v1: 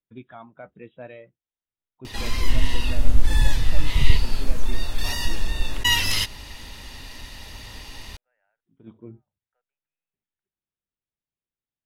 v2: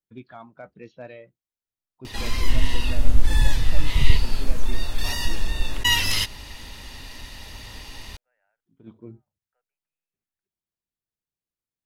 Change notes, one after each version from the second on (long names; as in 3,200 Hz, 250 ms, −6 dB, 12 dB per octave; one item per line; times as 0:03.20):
first voice: remove linear-phase brick-wall low-pass 3,900 Hz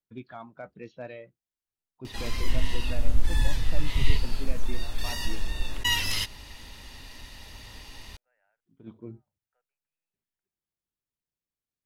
background −5.5 dB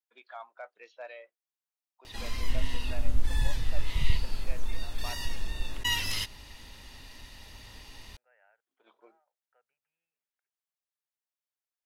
first voice: add high-pass filter 610 Hz 24 dB per octave
second voice +8.5 dB
background −3.5 dB